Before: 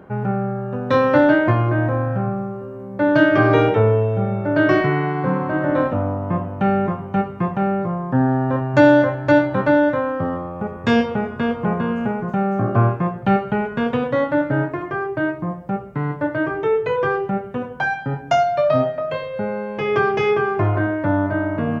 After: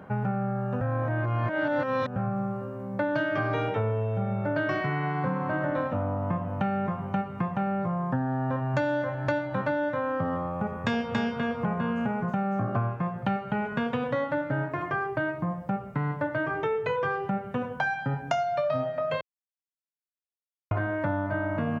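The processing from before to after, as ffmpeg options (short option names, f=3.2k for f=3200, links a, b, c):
-filter_complex "[0:a]asplit=2[a][b];[b]afade=t=in:st=10.64:d=0.01,afade=t=out:st=11.14:d=0.01,aecho=0:1:280|560:0.891251|0.0891251[c];[a][c]amix=inputs=2:normalize=0,asplit=5[d][e][f][g][h];[d]atrim=end=0.812[i];[e]atrim=start=0.808:end=2.162,asetpts=PTS-STARTPTS,areverse[j];[f]atrim=start=2.158:end=19.21,asetpts=PTS-STARTPTS,afade=t=out:st=17.048:d=0.004:c=hsin[k];[g]atrim=start=19.21:end=20.71,asetpts=PTS-STARTPTS,volume=0[l];[h]atrim=start=20.71,asetpts=PTS-STARTPTS,afade=t=in:d=0.004:c=hsin[m];[i][j]acrossfade=d=0.004:c1=hsin:c2=hsin[n];[k][l][m]concat=n=3:v=0:a=1[o];[n][o]acrossfade=d=0.004:c1=hsin:c2=hsin,highpass=74,equalizer=f=360:t=o:w=0.64:g=-8.5,acompressor=threshold=-25dB:ratio=6"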